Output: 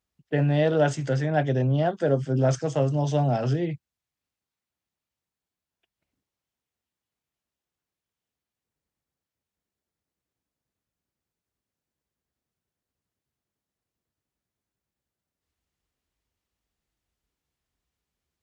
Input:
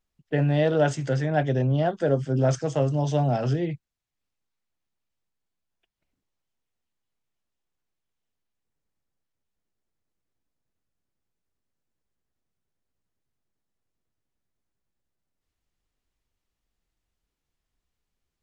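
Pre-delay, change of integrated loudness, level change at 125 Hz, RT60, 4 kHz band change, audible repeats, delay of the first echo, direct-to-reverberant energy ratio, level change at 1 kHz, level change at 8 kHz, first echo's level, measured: no reverb, 0.0 dB, 0.0 dB, no reverb, 0.0 dB, no echo, no echo, no reverb, 0.0 dB, 0.0 dB, no echo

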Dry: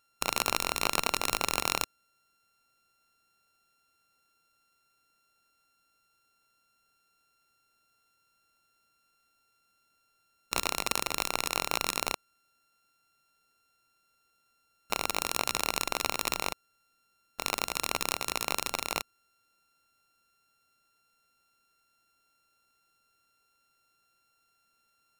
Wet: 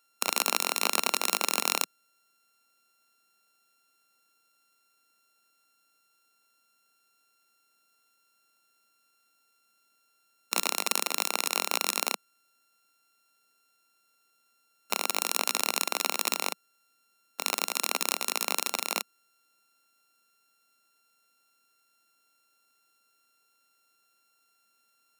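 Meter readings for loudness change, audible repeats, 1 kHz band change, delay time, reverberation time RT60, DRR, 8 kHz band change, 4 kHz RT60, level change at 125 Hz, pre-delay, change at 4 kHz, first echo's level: +2.5 dB, no echo, +0.5 dB, no echo, no reverb, no reverb, +4.0 dB, no reverb, under -10 dB, no reverb, +2.5 dB, no echo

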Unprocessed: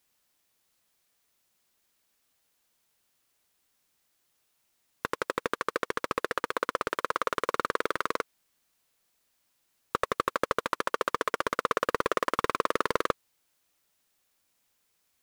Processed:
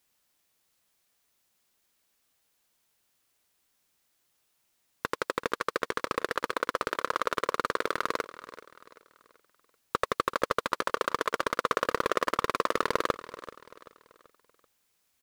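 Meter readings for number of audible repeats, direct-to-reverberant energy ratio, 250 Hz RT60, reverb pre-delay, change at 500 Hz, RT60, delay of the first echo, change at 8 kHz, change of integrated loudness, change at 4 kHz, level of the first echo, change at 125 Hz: 3, no reverb, no reverb, no reverb, 0.0 dB, no reverb, 385 ms, +0.5 dB, 0.0 dB, +1.5 dB, -16.0 dB, 0.0 dB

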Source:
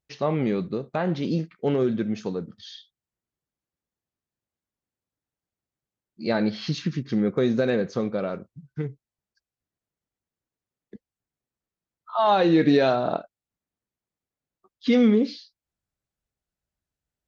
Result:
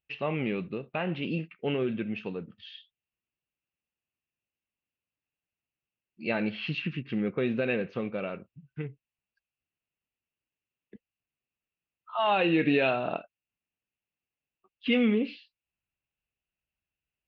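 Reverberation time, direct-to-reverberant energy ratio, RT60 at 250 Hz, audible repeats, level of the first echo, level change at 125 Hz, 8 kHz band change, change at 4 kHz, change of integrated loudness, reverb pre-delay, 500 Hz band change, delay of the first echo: no reverb, no reverb, no reverb, no echo, no echo, -6.5 dB, no reading, -2.5 dB, -5.5 dB, no reverb, -6.5 dB, no echo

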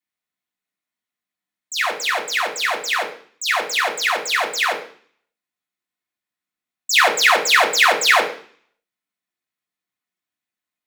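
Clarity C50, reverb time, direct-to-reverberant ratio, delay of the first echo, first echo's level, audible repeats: 10.0 dB, 0.50 s, -7.0 dB, no echo, no echo, no echo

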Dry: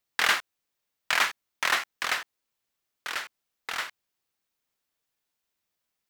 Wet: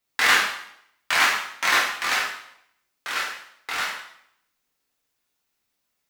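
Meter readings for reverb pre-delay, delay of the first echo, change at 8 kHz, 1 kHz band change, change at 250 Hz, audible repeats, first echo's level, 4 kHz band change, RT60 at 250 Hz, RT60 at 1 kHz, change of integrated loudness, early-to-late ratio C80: 4 ms, no echo, +6.0 dB, +6.5 dB, +7.5 dB, no echo, no echo, +5.5 dB, 0.75 s, 0.70 s, +5.5 dB, 6.5 dB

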